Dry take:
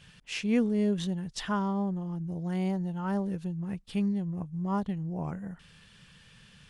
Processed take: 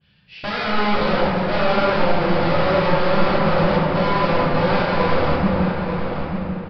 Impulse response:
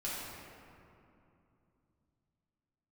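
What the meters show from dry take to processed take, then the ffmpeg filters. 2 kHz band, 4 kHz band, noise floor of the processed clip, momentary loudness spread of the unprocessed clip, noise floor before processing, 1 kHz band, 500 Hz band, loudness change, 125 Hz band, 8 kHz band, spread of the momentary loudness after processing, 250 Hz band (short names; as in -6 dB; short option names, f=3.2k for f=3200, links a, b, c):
+20.0 dB, +15.5 dB, -41 dBFS, 9 LU, -57 dBFS, +19.5 dB, +18.0 dB, +12.0 dB, +10.5 dB, n/a, 7 LU, +7.0 dB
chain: -filter_complex "[0:a]afwtdn=0.0224,highpass=44,equalizer=f=1.2k:w=1.2:g=-4,acontrast=89,alimiter=limit=-19dB:level=0:latency=1:release=34,aeval=exprs='(mod(17.8*val(0)+1,2)-1)/17.8':c=same,asplit=2[a][b];[b]adelay=890,lowpass=f=2.9k:p=1,volume=-6dB,asplit=2[c][d];[d]adelay=890,lowpass=f=2.9k:p=1,volume=0.18,asplit=2[e][f];[f]adelay=890,lowpass=f=2.9k:p=1,volume=0.18[g];[a][c][e][g]amix=inputs=4:normalize=0[h];[1:a]atrim=start_sample=2205[i];[h][i]afir=irnorm=-1:irlink=0,aresample=11025,aresample=44100,adynamicequalizer=threshold=0.0126:dfrequency=1900:dqfactor=0.7:tfrequency=1900:tqfactor=0.7:attack=5:release=100:ratio=0.375:range=2:mode=cutabove:tftype=highshelf,volume=6.5dB"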